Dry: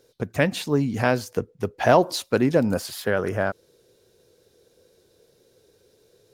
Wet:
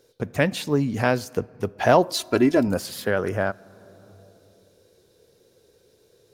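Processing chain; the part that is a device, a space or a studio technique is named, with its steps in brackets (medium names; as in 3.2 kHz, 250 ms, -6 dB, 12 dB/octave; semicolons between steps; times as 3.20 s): compressed reverb return (on a send at -10 dB: reverberation RT60 2.0 s, pre-delay 13 ms + compression 8:1, threshold -35 dBFS, peak gain reduction 20.5 dB); 2.14–2.68 s: on the sum: comb 3 ms, depth 76%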